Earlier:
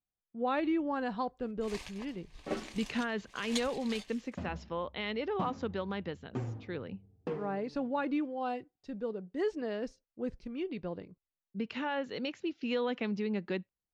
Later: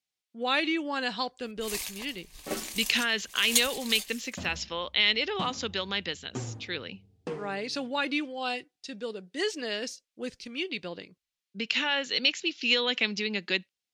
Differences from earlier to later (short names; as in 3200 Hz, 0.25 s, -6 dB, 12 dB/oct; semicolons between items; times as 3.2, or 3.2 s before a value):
speech: add weighting filter D; master: remove tape spacing loss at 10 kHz 23 dB